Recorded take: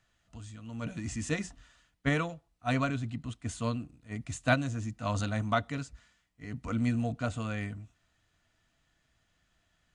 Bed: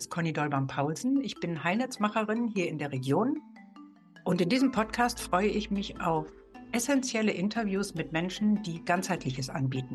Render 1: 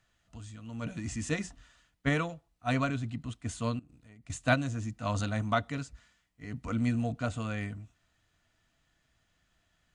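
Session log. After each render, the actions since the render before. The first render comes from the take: 3.79–4.30 s: compression 12:1, threshold -51 dBFS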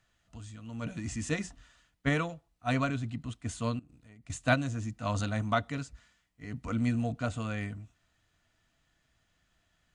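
no audible change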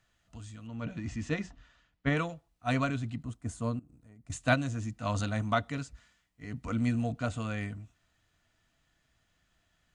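0.67–2.17 s: distance through air 130 m; 3.23–4.32 s: peaking EQ 3.1 kHz -12 dB 1.8 oct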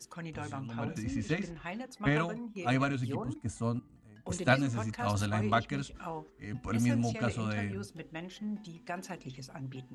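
add bed -11.5 dB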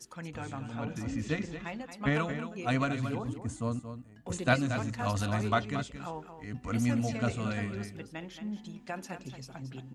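delay 226 ms -10 dB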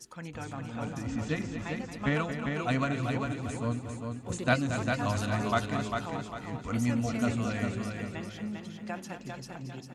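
feedback delay 399 ms, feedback 38%, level -5 dB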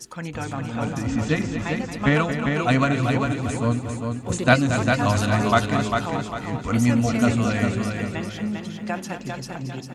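trim +9.5 dB

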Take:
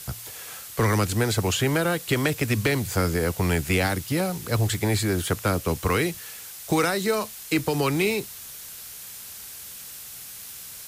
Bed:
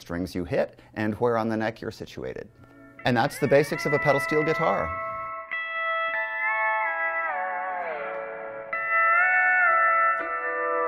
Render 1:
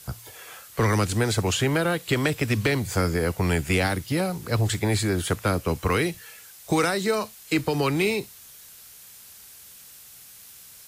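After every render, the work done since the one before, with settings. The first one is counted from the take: noise print and reduce 7 dB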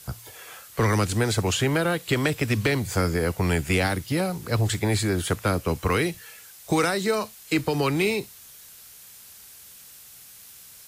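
no audible change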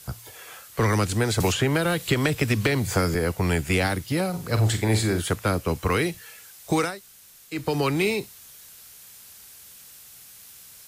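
1.40–3.15 s: three bands compressed up and down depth 100%; 4.29–5.20 s: flutter echo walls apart 7.8 m, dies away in 0.31 s; 6.89–7.58 s: room tone, crossfade 0.24 s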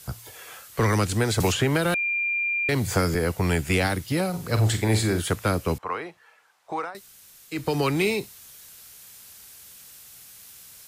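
1.94–2.69 s: bleep 2.39 kHz -22.5 dBFS; 5.78–6.95 s: band-pass filter 930 Hz, Q 1.7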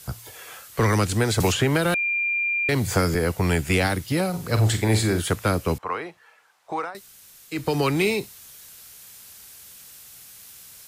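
trim +1.5 dB

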